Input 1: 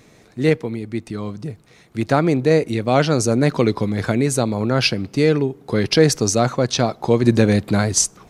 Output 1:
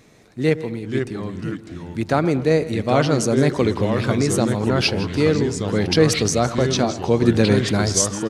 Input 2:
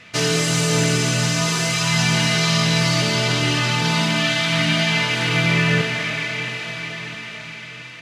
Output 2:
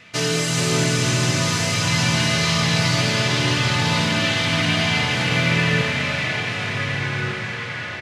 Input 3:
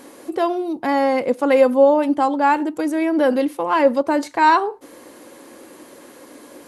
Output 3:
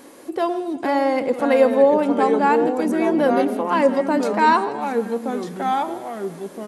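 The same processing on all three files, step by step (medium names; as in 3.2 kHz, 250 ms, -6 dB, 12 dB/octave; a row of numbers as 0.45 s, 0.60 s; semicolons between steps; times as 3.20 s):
resampled via 32 kHz; two-band feedback delay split 1.8 kHz, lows 113 ms, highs 163 ms, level -15.5 dB; ever faster or slower copies 399 ms, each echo -3 st, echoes 2, each echo -6 dB; trim -2 dB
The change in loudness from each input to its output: -1.0 LU, -1.0 LU, -1.5 LU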